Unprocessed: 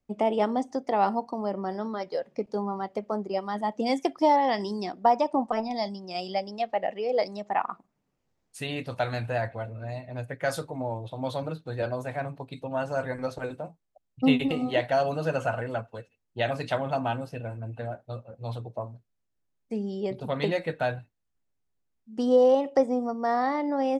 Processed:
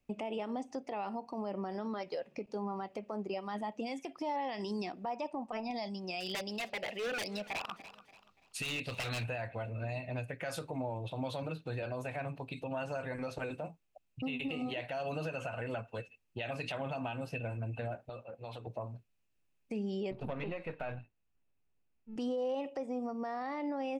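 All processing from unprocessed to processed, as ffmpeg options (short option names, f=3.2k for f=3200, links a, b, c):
-filter_complex "[0:a]asettb=1/sr,asplit=3[a][b][c];[a]atrim=end=6.204[d];[b]atrim=start=6.2:end=9.24,asetpts=PTS-STARTPTS,afade=t=in:d=0.004:c=qsin,afade=t=out:st=3.036:d=0.004:c=qsin,equalizer=f=4k:t=o:w=0.73:g=9,aeval=exprs='0.0447*(abs(mod(val(0)/0.0447+3,4)-2)-1)':c=same,aecho=1:1:289|578|867:0.075|0.0277|0.0103,atrim=end_sample=134064[e];[c]atrim=start=9.236[f];[d][e]acrossfade=d=0.004:c1=hsin:c2=qsin[g];[g][f]acrossfade=d=0.004:c1=qsin:c2=hsin,asettb=1/sr,asplit=3[h][i][j];[h]atrim=end=18.094[k];[i]atrim=start=18.09:end=18.67,asetpts=PTS-STARTPTS,afade=t=in:d=0.004:c=qsin,afade=t=out:st=0.576:d=0.004:c=qsin,bass=f=250:g=-11,treble=f=4k:g=-5,acompressor=threshold=-42dB:ratio=4:attack=3.2:release=140:knee=1:detection=peak,highpass=49[l];[j]atrim=start=18.666[m];[k][l]acrossfade=d=0.004:c1=hsin:c2=qsin[n];[n][m]acrossfade=d=0.004:c1=qsin:c2=hsin,asettb=1/sr,asplit=3[o][p][q];[o]atrim=end=20.114[r];[p]atrim=start=20.11:end=22.16,asetpts=PTS-STARTPTS,afade=t=in:d=0.004:c=qsin,afade=t=out:st=2.046:d=0.004:c=qsin,aeval=exprs='if(lt(val(0),0),0.447*val(0),val(0))':c=same,acrossover=split=3200[s][t];[t]acompressor=threshold=-52dB:ratio=4:attack=1:release=60[u];[s][u]amix=inputs=2:normalize=0,highshelf=f=2.8k:g=-11.5[v];[q]atrim=start=22.156[w];[r][v]acrossfade=d=0.004:c1=hsin:c2=qsin[x];[x][w]acrossfade=d=0.004:c1=qsin:c2=hsin,equalizer=f=2.6k:t=o:w=0.35:g=12,acompressor=threshold=-36dB:ratio=2.5,alimiter=level_in=6dB:limit=-24dB:level=0:latency=1:release=57,volume=-6dB,volume=1dB"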